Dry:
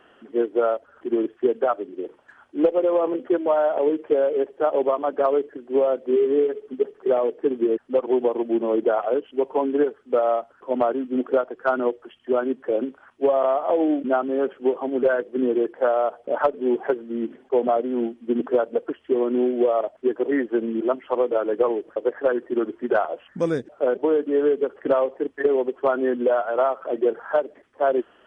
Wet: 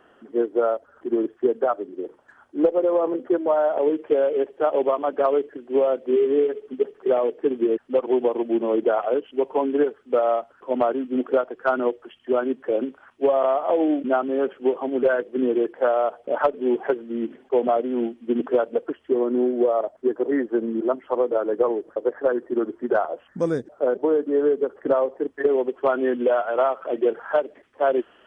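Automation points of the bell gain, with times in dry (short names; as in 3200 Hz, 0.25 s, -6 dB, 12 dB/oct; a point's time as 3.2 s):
bell 2700 Hz 1 oct
3.46 s -6.5 dB
4.12 s +2 dB
18.69 s +2 dB
19.28 s -8 dB
25.05 s -8 dB
26 s +3.5 dB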